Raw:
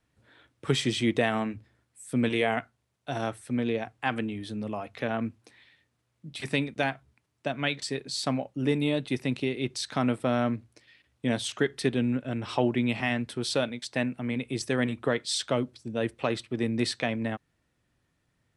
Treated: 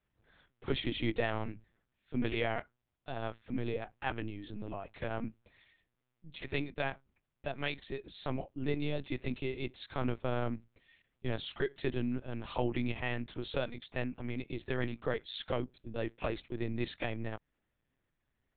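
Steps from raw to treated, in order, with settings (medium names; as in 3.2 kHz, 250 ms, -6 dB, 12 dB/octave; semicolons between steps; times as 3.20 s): high-pass 92 Hz 24 dB/octave; LPC vocoder at 8 kHz pitch kept; trim -7 dB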